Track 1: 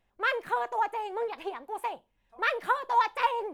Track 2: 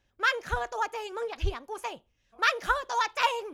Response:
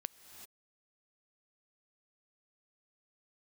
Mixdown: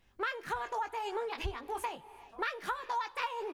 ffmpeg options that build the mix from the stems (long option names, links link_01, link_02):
-filter_complex "[0:a]equalizer=frequency=4600:width_type=o:width=0.56:gain=3.5,volume=2dB,asplit=3[link_01][link_02][link_03];[link_02]volume=-5.5dB[link_04];[1:a]adelay=20,volume=-1dB,asplit=2[link_05][link_06];[link_06]volume=-15dB[link_07];[link_03]apad=whole_len=156613[link_08];[link_05][link_08]sidechaincompress=threshold=-30dB:ratio=8:attack=16:release=248[link_09];[2:a]atrim=start_sample=2205[link_10];[link_04][link_07]amix=inputs=2:normalize=0[link_11];[link_11][link_10]afir=irnorm=-1:irlink=0[link_12];[link_01][link_09][link_12]amix=inputs=3:normalize=0,equalizer=frequency=640:width=1.8:gain=-7,acompressor=threshold=-33dB:ratio=6"